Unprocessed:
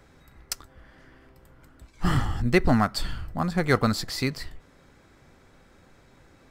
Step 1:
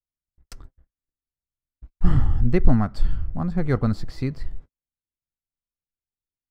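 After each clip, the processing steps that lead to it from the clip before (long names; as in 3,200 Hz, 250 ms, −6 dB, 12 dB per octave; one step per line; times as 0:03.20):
noise gate −45 dBFS, range −50 dB
spectral tilt −3.5 dB per octave
level −6.5 dB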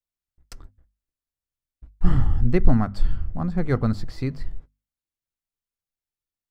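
mains-hum notches 50/100/150/200/250 Hz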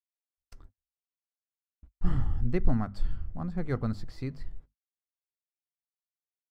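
noise gate −43 dBFS, range −31 dB
level −8.5 dB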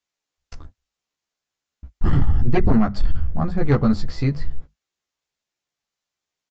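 double-tracking delay 14 ms −3 dB
downsampling to 16,000 Hz
sine wavefolder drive 9 dB, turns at −9 dBFS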